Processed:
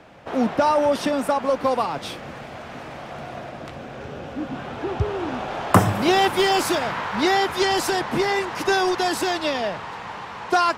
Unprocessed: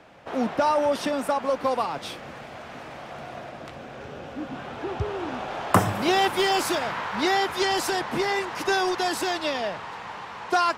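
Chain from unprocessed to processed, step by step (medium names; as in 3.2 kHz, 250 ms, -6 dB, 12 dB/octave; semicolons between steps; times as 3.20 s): bass shelf 320 Hz +4 dB; trim +2.5 dB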